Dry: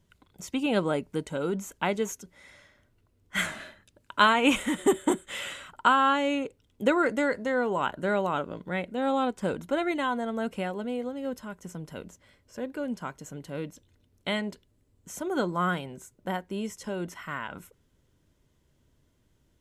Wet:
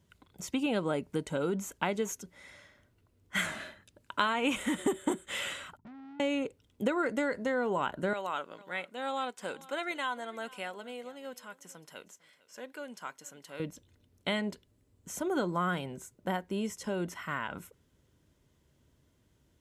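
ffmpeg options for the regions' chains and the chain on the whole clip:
-filter_complex "[0:a]asettb=1/sr,asplit=3[a][b][c];[a]atrim=end=5.774[d];[b]atrim=start=5.77:end=6.2,asetpts=PTS-STARTPTS,afade=t=in:d=0.004:c=qsin,afade=t=out:st=0.426:d=0.004:c=qsin,lowpass=f=170:t=q:w=2.1,aeval=exprs='(tanh(224*val(0)+0.65)-tanh(0.65))/224':c=same[e];[c]atrim=start=6.196[f];[d][e]acrossfade=d=0.004:c1=hsin:c2=qsin[g];[g][f]acrossfade=d=0.004:c1=qsin:c2=hsin,asettb=1/sr,asplit=3[h][i][j];[h]atrim=end=8.134[k];[i]atrim=start=8.13:end=13.6,asetpts=PTS-STARTPTS,afade=t=in:d=0.004:c=qsin,afade=t=out:st=5.466:d=0.004:c=qsin,highpass=f=1.4k:p=1,aecho=1:1:451:0.0841,atrim=end_sample=241227[l];[j]atrim=start=13.596[m];[k][l]acrossfade=d=0.004:c1=hsin:c2=qsin[n];[n][m]acrossfade=d=0.004:c1=qsin:c2=hsin,highpass=45,acompressor=threshold=-27dB:ratio=4"

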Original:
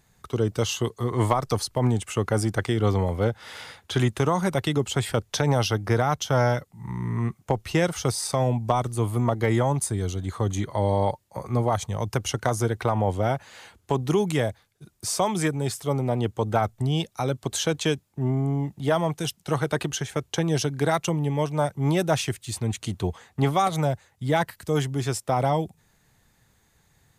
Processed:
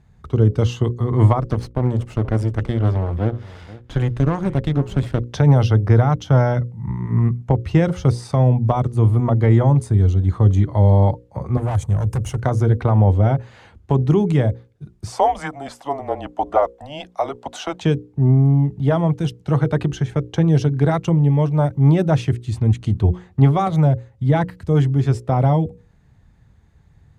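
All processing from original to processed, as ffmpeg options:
-filter_complex "[0:a]asettb=1/sr,asplit=3[a][b][c];[a]atrim=end=1.404[d];[b]atrim=start=1.4:end=5.24,asetpts=PTS-STARTPTS,afade=t=in:d=0.004:c=qsin,afade=t=out:st=3.836:d=0.004:c=qsin,aeval=exprs='max(val(0),0)':c=same,aecho=1:1:480:0.119,atrim=end_sample=169344[e];[c]atrim=start=5.236[f];[d][e]acrossfade=d=0.004:c1=hsin:c2=qsin[g];[g][f]acrossfade=d=0.004:c1=qsin:c2=hsin,asettb=1/sr,asplit=3[h][i][j];[h]atrim=end=11.574[k];[i]atrim=start=11.57:end=12.4,asetpts=PTS-STARTPTS,afade=t=in:d=0.004:c=qsin,afade=t=out:st=0.826:d=0.004:c=qsin,asoftclip=type=hard:threshold=-25.5dB,highshelf=f=6.4k:t=q:w=1.5:g=10.5[l];[j]atrim=start=12.396[m];[k][l]acrossfade=d=0.004:c1=hsin:c2=qsin[n];[n][m]acrossfade=d=0.004:c1=qsin:c2=hsin,asettb=1/sr,asplit=3[o][p][q];[o]atrim=end=15.124[r];[p]atrim=start=15.12:end=17.82,asetpts=PTS-STARTPTS,afade=t=in:d=0.004:c=qsin,afade=t=out:st=2.696:d=0.004:c=qsin,highpass=f=900:t=q:w=3.7,afreqshift=-150[s];[q]atrim=start=17.816[t];[r][s]acrossfade=d=0.004:c1=hsin:c2=qsin[u];[u][t]acrossfade=d=0.004:c1=qsin:c2=hsin,highpass=41,aemphasis=mode=reproduction:type=riaa,bandreject=f=60:t=h:w=6,bandreject=f=120:t=h:w=6,bandreject=f=180:t=h:w=6,bandreject=f=240:t=h:w=6,bandreject=f=300:t=h:w=6,bandreject=f=360:t=h:w=6,bandreject=f=420:t=h:w=6,bandreject=f=480:t=h:w=6,bandreject=f=540:t=h:w=6,volume=1dB"

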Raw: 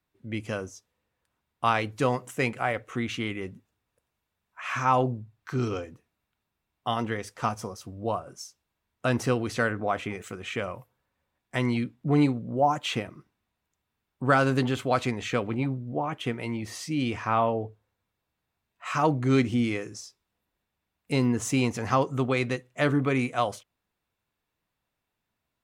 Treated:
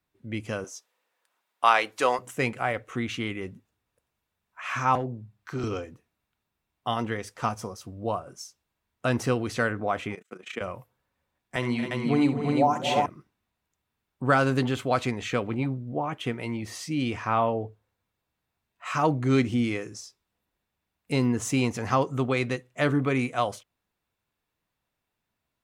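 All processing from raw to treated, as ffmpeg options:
-filter_complex "[0:a]asettb=1/sr,asplit=3[a][b][c];[a]atrim=end=0.644[d];[b]atrim=start=0.64:end=2.19,asetpts=PTS-STARTPTS,afade=t=in:d=0.004:c=qsin,afade=t=out:st=1.546:d=0.004:c=qsin,highpass=550,acontrast=33[e];[c]atrim=start=2.186[f];[d][e]acrossfade=d=0.004:c1=hsin:c2=qsin[g];[g][f]acrossfade=d=0.004:c1=qsin:c2=hsin,asettb=1/sr,asplit=3[h][i][j];[h]atrim=end=4.954[k];[i]atrim=start=4.95:end=5.64,asetpts=PTS-STARTPTS,afade=t=in:d=0.004:c=qsin,afade=t=out:st=0.686:d=0.004:c=qsin,bandreject=f=50:t=h:w=6,bandreject=f=100:t=h:w=6,bandreject=f=150:t=h:w=6,bandreject=f=200:t=h:w=6,acrossover=split=290|600[l][m][n];[l]acompressor=threshold=-33dB:ratio=4[o];[m]acompressor=threshold=-32dB:ratio=4[p];[n]acompressor=threshold=-38dB:ratio=4[q];[o][p][q]amix=inputs=3:normalize=0,aeval=exprs='clip(val(0),-1,0.0562)':c=same[r];[j]atrim=start=5.636[s];[k][r]acrossfade=d=0.004:c1=hsin:c2=qsin[t];[t][s]acrossfade=d=0.004:c1=qsin:c2=hsin,asettb=1/sr,asplit=3[u][v][w];[u]atrim=end=10.154[x];[v]atrim=start=10.15:end=10.61,asetpts=PTS-STARTPTS,afade=t=in:d=0.004:c=qsin,afade=t=out:st=0.456:d=0.004:c=qsin,agate=range=-27dB:threshold=-41dB:ratio=16:release=100:detection=peak,highpass=f=190:w=0.5412,highpass=f=190:w=1.3066,tremolo=f=28:d=0.788[y];[w]atrim=start=10.606[z];[x][y]acrossfade=d=0.004:c1=hsin:c2=qsin[aa];[aa][z]acrossfade=d=0.004:c1=qsin:c2=hsin,asettb=1/sr,asplit=3[ab][ac][ad];[ab]atrim=end=11.564[ae];[ac]atrim=start=11.56:end=13.06,asetpts=PTS-STARTPTS,afade=t=in:d=0.004:c=qsin,afade=t=out:st=1.496:d=0.004:c=qsin,highpass=140,bandreject=f=50:t=h:w=6,bandreject=f=100:t=h:w=6,bandreject=f=150:t=h:w=6,bandreject=f=200:t=h:w=6,bandreject=f=250:t=h:w=6,bandreject=f=300:t=h:w=6,bandreject=f=350:t=h:w=6,bandreject=f=400:t=h:w=6,aecho=1:1:65|225|268|349:0.266|0.251|0.355|0.708,atrim=end_sample=66150[af];[ad]atrim=start=13.056[ag];[ae][af]acrossfade=d=0.004:c1=hsin:c2=qsin[ah];[ah][ag]acrossfade=d=0.004:c1=qsin:c2=hsin"

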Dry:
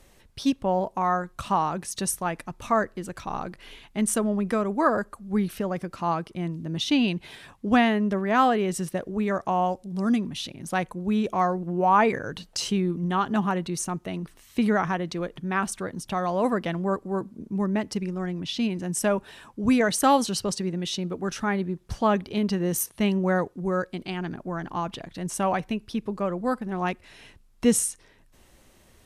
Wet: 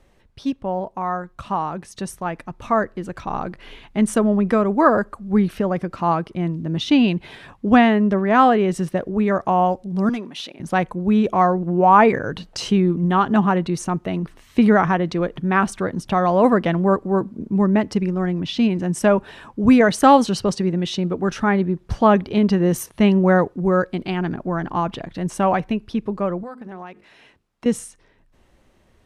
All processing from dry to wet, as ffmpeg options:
-filter_complex "[0:a]asettb=1/sr,asplit=3[a][b][c];[a]atrim=end=10.094[d];[b]atrim=start=10.09:end=10.6,asetpts=PTS-STARTPTS,afade=t=in:d=0.004:c=qsin,afade=t=out:st=0.506:d=0.004:c=qsin,highpass=410,asoftclip=type=hard:threshold=-26dB[e];[c]atrim=start=10.596[f];[d][e]acrossfade=d=0.004:c1=hsin:c2=qsin[g];[g][f]acrossfade=d=0.004:c1=qsin:c2=hsin,asettb=1/sr,asplit=3[h][i][j];[h]atrim=end=26.434[k];[i]atrim=start=26.43:end=27.66,asetpts=PTS-STARTPTS,afade=t=in:d=0.004:c=qsin,afade=t=out:st=1.226:d=0.004:c=qsin,highpass=f=290:p=1,bandreject=f=50:t=h:w=6,bandreject=f=100:t=h:w=6,bandreject=f=150:t=h:w=6,bandreject=f=200:t=h:w=6,bandreject=f=250:t=h:w=6,bandreject=f=300:t=h:w=6,bandreject=f=350:t=h:w=6,bandreject=f=400:t=h:w=6,bandreject=f=450:t=h:w=6,acompressor=threshold=-35dB:ratio=5:attack=3.2:release=140:knee=1:detection=peak[l];[j]atrim=start=27.656[m];[k][l]acrossfade=d=0.004:c1=hsin:c2=qsin[n];[n][m]acrossfade=d=0.004:c1=qsin:c2=hsin,lowpass=f=2.2k:p=1,dynaudnorm=f=290:g=21:m=11.5dB"

